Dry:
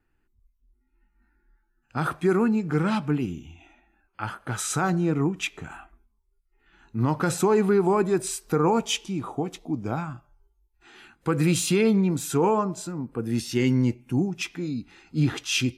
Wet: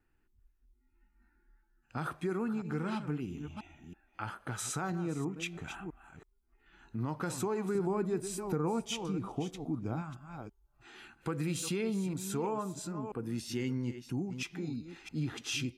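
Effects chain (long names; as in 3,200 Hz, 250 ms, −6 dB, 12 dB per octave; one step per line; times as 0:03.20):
delay that plays each chunk backwards 328 ms, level −12.5 dB
0:07.75–0:10.02: low-shelf EQ 360 Hz +7.5 dB
downward compressor 2 to 1, threshold −36 dBFS, peak gain reduction 12.5 dB
level −3 dB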